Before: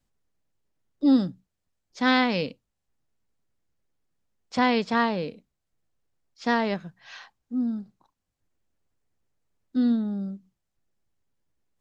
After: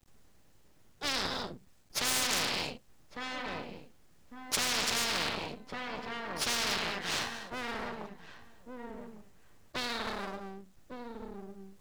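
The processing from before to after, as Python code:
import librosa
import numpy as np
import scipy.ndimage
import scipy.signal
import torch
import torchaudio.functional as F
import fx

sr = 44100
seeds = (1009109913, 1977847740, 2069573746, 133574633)

p1 = fx.rev_gated(x, sr, seeds[0], gate_ms=270, shape='flat', drr_db=9.5)
p2 = np.maximum(p1, 0.0)
p3 = p2 + fx.echo_filtered(p2, sr, ms=1152, feedback_pct=18, hz=2200.0, wet_db=-19.0, dry=0)
y = fx.spectral_comp(p3, sr, ratio=10.0)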